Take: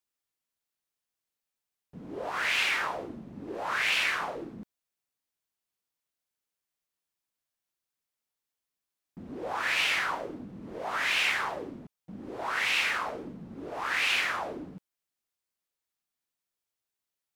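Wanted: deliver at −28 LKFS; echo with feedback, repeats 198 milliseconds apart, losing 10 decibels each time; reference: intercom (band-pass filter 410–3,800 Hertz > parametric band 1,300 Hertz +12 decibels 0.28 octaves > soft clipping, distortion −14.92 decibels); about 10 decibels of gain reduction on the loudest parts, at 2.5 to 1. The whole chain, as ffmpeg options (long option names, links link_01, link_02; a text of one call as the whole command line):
ffmpeg -i in.wav -af "acompressor=threshold=-39dB:ratio=2.5,highpass=410,lowpass=3800,equalizer=frequency=1300:width_type=o:width=0.28:gain=12,aecho=1:1:198|396|594|792:0.316|0.101|0.0324|0.0104,asoftclip=threshold=-30dB,volume=9.5dB" out.wav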